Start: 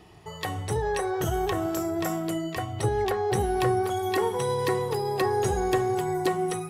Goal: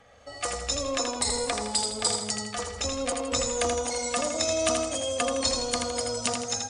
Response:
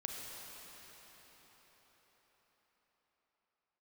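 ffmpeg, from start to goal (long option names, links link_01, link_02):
-filter_complex "[0:a]lowshelf=frequency=690:width_type=q:width=1.5:gain=-9.5,acrossover=split=6100[link_01][link_02];[link_02]dynaudnorm=framelen=130:gausssize=5:maxgain=13.5dB[link_03];[link_01][link_03]amix=inputs=2:normalize=0,asetrate=28595,aresample=44100,atempo=1.54221,aecho=1:1:81|162|243|324|405:0.562|0.225|0.09|0.036|0.0144"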